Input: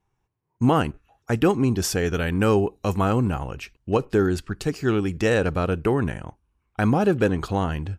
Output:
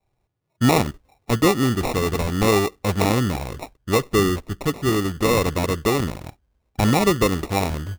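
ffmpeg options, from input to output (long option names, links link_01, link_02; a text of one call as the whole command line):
ffmpeg -i in.wav -af "adynamicequalizer=threshold=0.0224:dfrequency=150:dqfactor=0.76:tfrequency=150:tqfactor=0.76:attack=5:release=100:ratio=0.375:range=2:mode=cutabove:tftype=bell,acrusher=samples=28:mix=1:aa=0.000001,volume=2.5dB" out.wav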